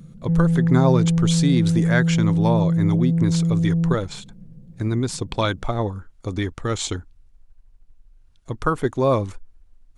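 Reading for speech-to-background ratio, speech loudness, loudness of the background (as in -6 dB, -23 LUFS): -4.5 dB, -24.5 LUFS, -20.0 LUFS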